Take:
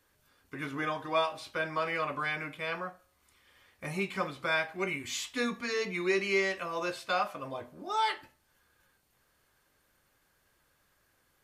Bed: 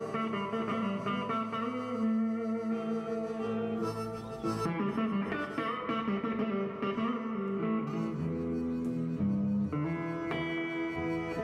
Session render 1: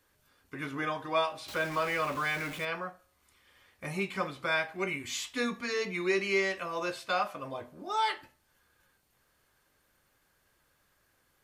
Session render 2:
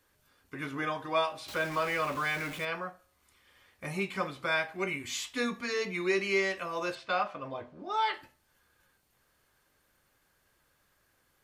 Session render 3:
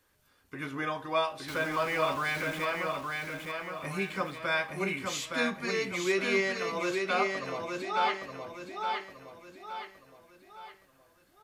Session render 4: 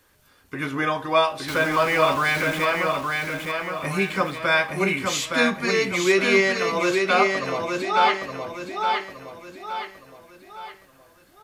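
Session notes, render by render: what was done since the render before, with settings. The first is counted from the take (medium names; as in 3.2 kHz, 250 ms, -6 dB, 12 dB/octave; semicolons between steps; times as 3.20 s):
1.48–2.65 s: jump at every zero crossing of -38.5 dBFS
6.95–8.14 s: low-pass 4.1 kHz
feedback delay 867 ms, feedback 42%, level -4 dB
trim +9.5 dB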